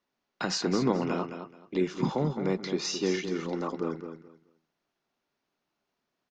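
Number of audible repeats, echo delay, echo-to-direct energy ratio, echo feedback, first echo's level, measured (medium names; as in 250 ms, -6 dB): 2, 214 ms, -9.0 dB, 21%, -9.0 dB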